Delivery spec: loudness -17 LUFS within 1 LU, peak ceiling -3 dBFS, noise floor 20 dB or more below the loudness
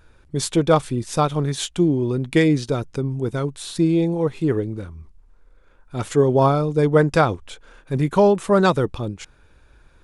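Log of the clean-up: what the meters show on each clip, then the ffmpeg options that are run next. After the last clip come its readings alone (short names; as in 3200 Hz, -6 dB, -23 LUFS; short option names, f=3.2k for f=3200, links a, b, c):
loudness -20.5 LUFS; peak -3.0 dBFS; loudness target -17.0 LUFS
-> -af "volume=3.5dB,alimiter=limit=-3dB:level=0:latency=1"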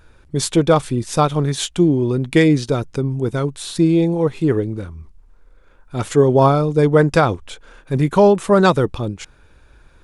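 loudness -17.0 LUFS; peak -3.0 dBFS; noise floor -50 dBFS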